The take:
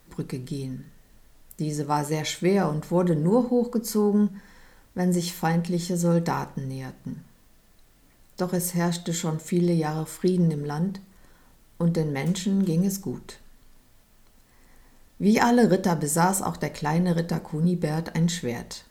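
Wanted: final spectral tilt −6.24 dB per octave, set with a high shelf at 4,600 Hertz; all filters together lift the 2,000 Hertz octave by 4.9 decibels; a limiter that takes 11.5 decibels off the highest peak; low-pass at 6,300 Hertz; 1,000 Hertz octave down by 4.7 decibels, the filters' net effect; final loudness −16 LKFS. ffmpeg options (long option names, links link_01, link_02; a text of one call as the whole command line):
ffmpeg -i in.wav -af "lowpass=6300,equalizer=frequency=1000:width_type=o:gain=-8,equalizer=frequency=2000:width_type=o:gain=9,highshelf=frequency=4600:gain=-3.5,volume=12dB,alimiter=limit=-6dB:level=0:latency=1" out.wav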